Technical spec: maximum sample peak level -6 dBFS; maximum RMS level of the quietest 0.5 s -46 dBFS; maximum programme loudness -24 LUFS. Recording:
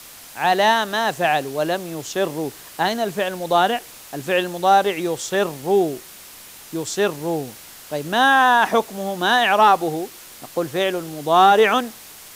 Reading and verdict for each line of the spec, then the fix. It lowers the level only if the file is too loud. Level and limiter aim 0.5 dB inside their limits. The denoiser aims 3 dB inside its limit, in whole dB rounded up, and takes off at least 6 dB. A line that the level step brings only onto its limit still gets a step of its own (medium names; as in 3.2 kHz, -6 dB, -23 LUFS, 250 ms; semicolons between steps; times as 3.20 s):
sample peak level -4.0 dBFS: fail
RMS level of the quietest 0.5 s -42 dBFS: fail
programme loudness -19.5 LUFS: fail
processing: trim -5 dB